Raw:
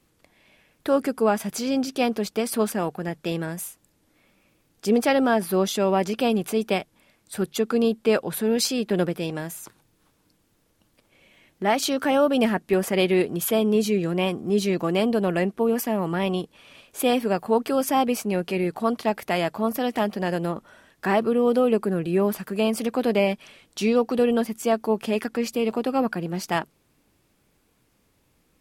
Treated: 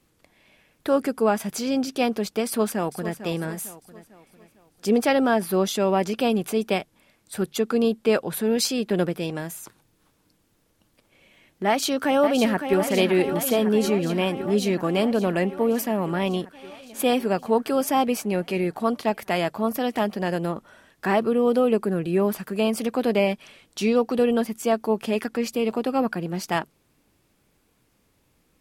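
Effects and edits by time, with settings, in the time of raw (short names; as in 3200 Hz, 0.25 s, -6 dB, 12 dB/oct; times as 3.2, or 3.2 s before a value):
2.46–3.2 echo throw 0.45 s, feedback 45%, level -12 dB
11.67–12.78 echo throw 0.56 s, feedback 75%, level -8 dB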